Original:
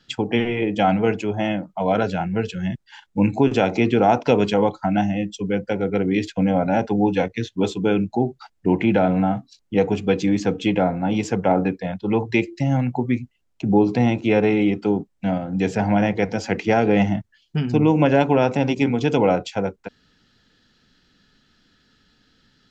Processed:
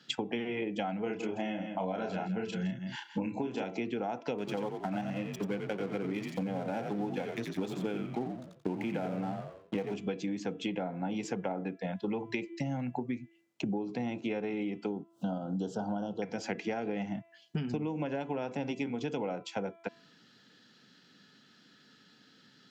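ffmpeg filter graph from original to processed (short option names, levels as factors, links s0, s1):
-filter_complex "[0:a]asettb=1/sr,asplit=3[s0][s1][s2];[s0]atrim=end=1.034[s3];[s1]atrim=start=1.03:end=3.64,asetpts=PTS-STARTPTS,afade=t=in:d=0.004:c=qsin,afade=t=out:st=2.606:d=0.004:c=qsin,asplit=2[s4][s5];[s5]adelay=32,volume=0.668[s6];[s4][s6]amix=inputs=2:normalize=0,atrim=end_sample=115101,aecho=1:1:165:0.251,atrim=end_sample=115101[s7];[s2]atrim=start=3.636[s8];[s3][s7]acrossfade=d=0.004:c1=hsin:c2=qsin[s9];[s9][s8]acrossfade=d=0.004:c1=qsin:c2=hsin,asettb=1/sr,asplit=3[s10][s11][s12];[s10]atrim=end=4.384[s13];[s11]atrim=start=4.38:end=9.94,asetpts=PTS-STARTPTS,afade=t=in:d=0.004:c=qsin,afade=t=out:st=5.556:d=0.004:c=qsin,aeval=exprs='sgn(val(0))*max(abs(val(0))-0.0188,0)':c=same,asplit=5[s14][s15][s16][s17][s18];[s15]adelay=88,afreqshift=-68,volume=0.501[s19];[s16]adelay=176,afreqshift=-136,volume=0.155[s20];[s17]adelay=264,afreqshift=-204,volume=0.0484[s21];[s18]adelay=352,afreqshift=-272,volume=0.015[s22];[s14][s19][s20][s21][s22]amix=inputs=5:normalize=0,atrim=end_sample=245196[s23];[s12]atrim=start=9.936[s24];[s13][s23]acrossfade=d=0.004:c1=hsin:c2=qsin[s25];[s25][s24]acrossfade=d=0.004:c1=qsin:c2=hsin,asettb=1/sr,asplit=3[s26][s27][s28];[s26]atrim=end=14.924[s29];[s27]atrim=start=14.92:end=16.22,asetpts=PTS-STARTPTS,afade=t=in:d=0.004:c=qsin,afade=t=out:st=1.296:d=0.004:c=qsin,asuperstop=centerf=2100:order=12:qfactor=1.5,acompressor=mode=upward:threshold=0.02:ratio=2.5:attack=3.2:release=140:knee=2.83:detection=peak[s30];[s28]atrim=start=16.216[s31];[s29][s30]acrossfade=d=0.004:c1=hsin:c2=qsin[s32];[s32][s31]acrossfade=d=0.004:c1=qsin:c2=hsin,highpass=f=140:w=0.5412,highpass=f=140:w=1.3066,bandreject=f=334.8:t=h:w=4,bandreject=f=669.6:t=h:w=4,bandreject=f=1004.4:t=h:w=4,bandreject=f=1339.2:t=h:w=4,bandreject=f=1674:t=h:w=4,bandreject=f=2008.8:t=h:w=4,bandreject=f=2343.6:t=h:w=4,bandreject=f=2678.4:t=h:w=4,bandreject=f=3013.2:t=h:w=4,bandreject=f=3348:t=h:w=4,bandreject=f=3682.8:t=h:w=4,acompressor=threshold=0.0282:ratio=16"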